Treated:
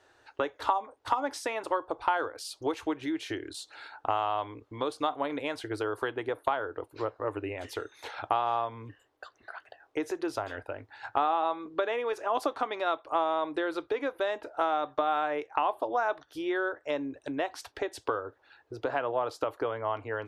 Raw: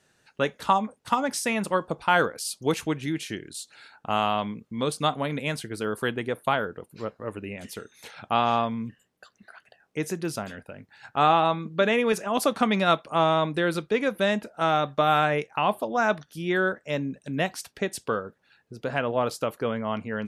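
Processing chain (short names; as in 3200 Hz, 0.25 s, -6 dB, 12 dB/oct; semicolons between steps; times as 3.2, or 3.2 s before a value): compressor 6:1, threshold -32 dBFS, peak gain reduction 16 dB; EQ curve 110 Hz 0 dB, 190 Hz -30 dB, 290 Hz +4 dB, 510 Hz +3 dB, 900 Hz +8 dB, 2500 Hz -2 dB, 3600 Hz 0 dB, 9300 Hz -10 dB; gain +1.5 dB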